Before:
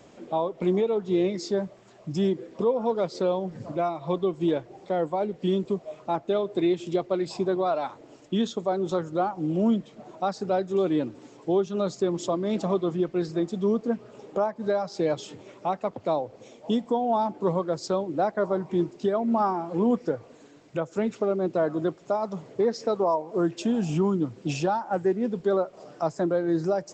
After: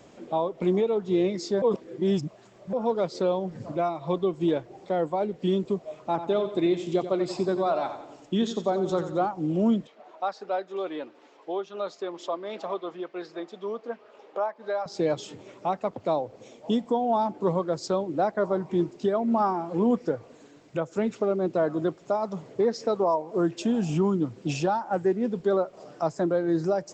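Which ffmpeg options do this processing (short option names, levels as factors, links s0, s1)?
-filter_complex "[0:a]asettb=1/sr,asplit=3[s0][s1][s2];[s0]atrim=end=5.974[s3];[s1]atrim=start=5.97:end=9.26,asetpts=PTS-STARTPTS,afade=t=in:d=0.004:c=qsin,afade=t=out:st=3.286:d=0.004:c=qsin,aecho=1:1:89|178|267|356|445:0.299|0.143|0.0688|0.033|0.0158,atrim=end_sample=145089[s4];[s2]atrim=start=9.256[s5];[s3][s4]acrossfade=d=0.004:c1=hsin:c2=qsin[s6];[s6][s5]acrossfade=d=0.004:c1=qsin:c2=hsin,asettb=1/sr,asplit=3[s7][s8][s9];[s7]atrim=end=9.874[s10];[s8]atrim=start=9.87:end=14.86,asetpts=PTS-STARTPTS,afade=t=in:d=0.004:c=qsin,afade=t=out:st=4.986:d=0.004:c=qsin,highpass=600,lowpass=3700[s11];[s9]atrim=start=14.856[s12];[s10][s11]acrossfade=d=0.004:c1=hsin:c2=qsin[s13];[s13][s12]acrossfade=d=0.004:c1=qsin:c2=hsin,asplit=3[s14][s15][s16];[s14]atrim=end=1.622[s17];[s15]atrim=start=1.618:end=2.732,asetpts=PTS-STARTPTS,areverse[s18];[s16]atrim=start=2.728[s19];[s17][s18]acrossfade=d=0.004:c1=hsin:c2=hsin[s20];[s20][s19]acrossfade=d=0.004:c1=hsin:c2=hsin"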